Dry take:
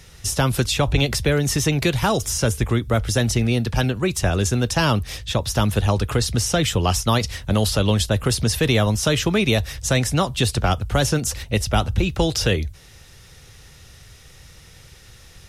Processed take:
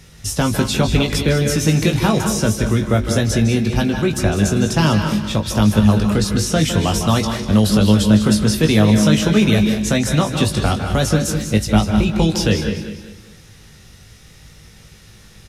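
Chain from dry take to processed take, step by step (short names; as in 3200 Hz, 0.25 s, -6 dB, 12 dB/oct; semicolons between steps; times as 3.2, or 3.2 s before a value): bell 210 Hz +7.5 dB 1.1 oct; doubler 19 ms -6 dB; feedback echo 0.198 s, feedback 38%, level -11 dB; on a send at -6 dB: reverb RT60 0.65 s, pre-delay 0.152 s; on the sum: gain -1 dB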